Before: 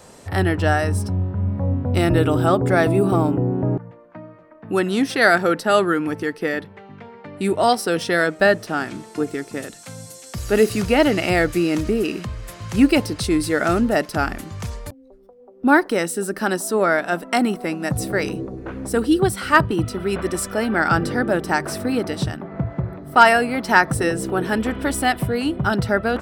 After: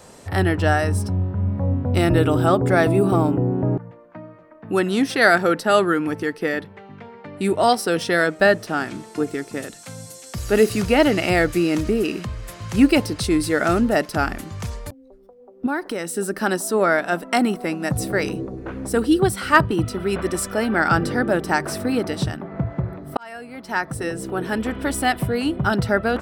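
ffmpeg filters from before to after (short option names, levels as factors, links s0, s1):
-filter_complex "[0:a]asettb=1/sr,asplit=3[s0][s1][s2];[s0]atrim=end=15.664[s3];[s1]atrim=start=15.66:end=16.16,asetpts=PTS-STARTPTS,afade=t=in:d=0.004:c=qsin,afade=t=out:st=0.496:d=0.004:c=qsin,acompressor=threshold=0.0562:ratio=2.5:attack=3.2:release=140:knee=1:detection=peak[s4];[s2]atrim=start=16.156[s5];[s3][s4]acrossfade=d=0.004:c1=hsin:c2=qsin[s6];[s6][s5]acrossfade=d=0.004:c1=qsin:c2=hsin,asplit=2[s7][s8];[s7]atrim=end=23.17,asetpts=PTS-STARTPTS,afade=t=out:st=23.166:d=0.004:c=hsin[s9];[s8]atrim=start=23.17,asetpts=PTS-STARTPTS,afade=t=in:d=2.63:c=qsin[s10];[s9][s10]concat=n=2:v=0:a=1"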